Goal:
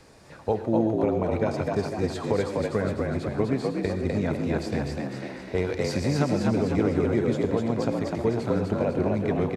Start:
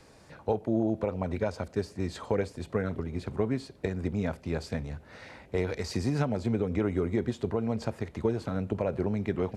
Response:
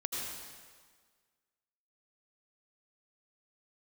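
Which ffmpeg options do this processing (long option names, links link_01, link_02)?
-filter_complex "[0:a]asplit=7[link_01][link_02][link_03][link_04][link_05][link_06][link_07];[link_02]adelay=251,afreqshift=57,volume=-3dB[link_08];[link_03]adelay=502,afreqshift=114,volume=-9.2dB[link_09];[link_04]adelay=753,afreqshift=171,volume=-15.4dB[link_10];[link_05]adelay=1004,afreqshift=228,volume=-21.6dB[link_11];[link_06]adelay=1255,afreqshift=285,volume=-27.8dB[link_12];[link_07]adelay=1506,afreqshift=342,volume=-34dB[link_13];[link_01][link_08][link_09][link_10][link_11][link_12][link_13]amix=inputs=7:normalize=0,asplit=2[link_14][link_15];[1:a]atrim=start_sample=2205,afade=type=out:start_time=0.21:duration=0.01,atrim=end_sample=9702[link_16];[link_15][link_16]afir=irnorm=-1:irlink=0,volume=-7dB[link_17];[link_14][link_17]amix=inputs=2:normalize=0"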